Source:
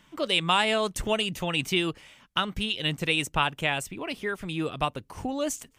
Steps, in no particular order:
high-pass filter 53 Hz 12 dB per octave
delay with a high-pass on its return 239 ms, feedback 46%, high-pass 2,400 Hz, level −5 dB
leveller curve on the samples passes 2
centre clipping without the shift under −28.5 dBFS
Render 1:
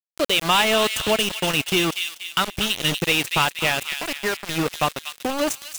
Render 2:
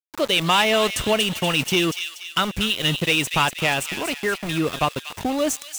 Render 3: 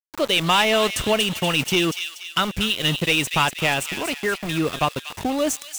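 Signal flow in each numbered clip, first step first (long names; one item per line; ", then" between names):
high-pass filter, then centre clipping without the shift, then delay with a high-pass on its return, then leveller curve on the samples
leveller curve on the samples, then high-pass filter, then centre clipping without the shift, then delay with a high-pass on its return
high-pass filter, then leveller curve on the samples, then centre clipping without the shift, then delay with a high-pass on its return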